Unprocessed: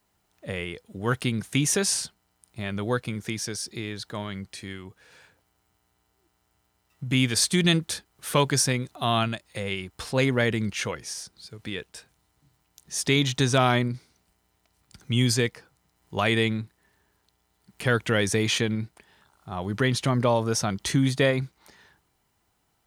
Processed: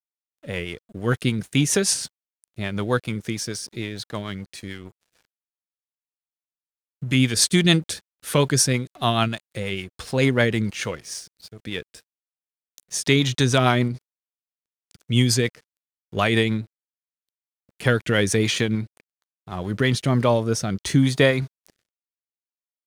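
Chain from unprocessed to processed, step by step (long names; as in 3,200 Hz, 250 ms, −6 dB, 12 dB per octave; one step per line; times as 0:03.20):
dead-zone distortion −49 dBFS
rotating-speaker cabinet horn 6.7 Hz, later 0.7 Hz, at 0:19.47
level +5.5 dB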